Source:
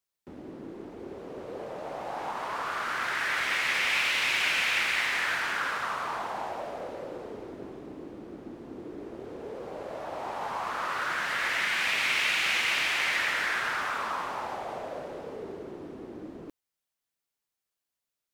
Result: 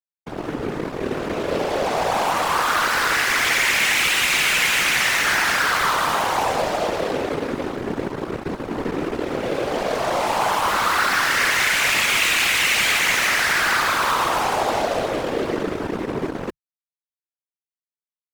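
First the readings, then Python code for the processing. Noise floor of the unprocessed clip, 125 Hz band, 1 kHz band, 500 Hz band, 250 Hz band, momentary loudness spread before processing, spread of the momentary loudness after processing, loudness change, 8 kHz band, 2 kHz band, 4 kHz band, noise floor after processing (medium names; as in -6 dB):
under -85 dBFS, +16.5 dB, +12.0 dB, +14.0 dB, +14.5 dB, 18 LU, 11 LU, +9.0 dB, +16.0 dB, +9.0 dB, +10.0 dB, under -85 dBFS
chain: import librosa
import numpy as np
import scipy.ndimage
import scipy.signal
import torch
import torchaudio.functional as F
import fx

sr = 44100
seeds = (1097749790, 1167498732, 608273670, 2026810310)

y = fx.fuzz(x, sr, gain_db=40.0, gate_db=-44.0)
y = fx.whisperise(y, sr, seeds[0])
y = y * 10.0 ** (-4.5 / 20.0)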